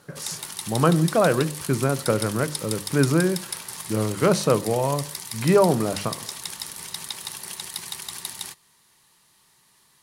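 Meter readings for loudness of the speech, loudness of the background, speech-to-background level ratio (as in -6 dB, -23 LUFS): -23.0 LUFS, -32.5 LUFS, 9.5 dB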